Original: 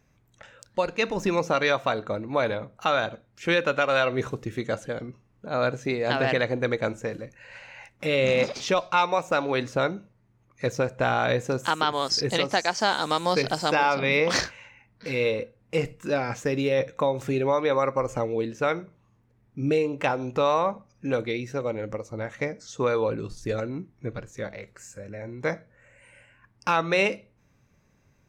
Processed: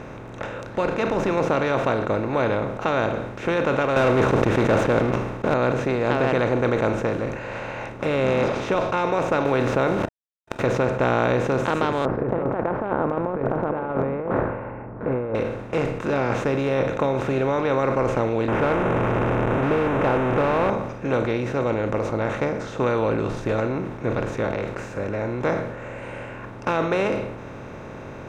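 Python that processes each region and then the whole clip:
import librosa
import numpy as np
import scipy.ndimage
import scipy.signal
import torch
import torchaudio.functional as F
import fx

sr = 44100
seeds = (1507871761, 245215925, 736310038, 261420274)

y = fx.chain(x, sr, fx.leveller(passes=3),
    fx.sustainer(db_per_s=97.0), at=(3.96, 5.54))
y = fx.chain(y, sr, fx.sample_gate(floor_db=-48.0),
    fx.env_flatten(amount_pct=70), at=(9.45, 10.65))
y = fx.chain(y, sr, fx.bessel_lowpass(hz=740.0, order=8),
    fx.over_compress(threshold_db=-31.0, ratio=-0.5), at=(12.05, 15.35))
y = fx.chain(y, sr, fx.delta_mod(bps=16000, step_db=-23.5),
    fx.lowpass(hz=1900.0, slope=12),
    fx.leveller(passes=1), at=(18.48, 20.7))
y = fx.bin_compress(y, sr, power=0.4)
y = fx.lowpass(y, sr, hz=1200.0, slope=6)
y = fx.sustainer(y, sr, db_per_s=56.0)
y = F.gain(torch.from_numpy(y), -4.0).numpy()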